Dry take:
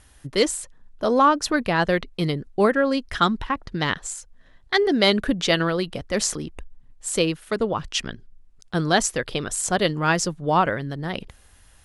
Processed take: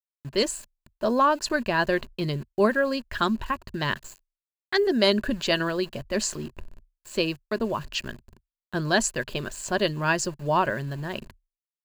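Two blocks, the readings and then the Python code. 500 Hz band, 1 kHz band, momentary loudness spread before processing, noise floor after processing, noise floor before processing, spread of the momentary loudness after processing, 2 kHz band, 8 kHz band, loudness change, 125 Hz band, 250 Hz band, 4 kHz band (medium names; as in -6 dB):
-3.0 dB, -4.0 dB, 12 LU, under -85 dBFS, -53 dBFS, 10 LU, -2.0 dB, -5.5 dB, -3.5 dB, -4.0 dB, -3.5 dB, -3.5 dB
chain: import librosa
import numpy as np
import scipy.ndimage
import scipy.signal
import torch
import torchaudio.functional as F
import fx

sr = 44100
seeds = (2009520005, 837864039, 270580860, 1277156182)

y = fx.env_lowpass(x, sr, base_hz=2700.0, full_db=-15.0)
y = np.where(np.abs(y) >= 10.0 ** (-39.0 / 20.0), y, 0.0)
y = fx.ripple_eq(y, sr, per_octave=1.4, db=8)
y = F.gain(torch.from_numpy(y), -4.0).numpy()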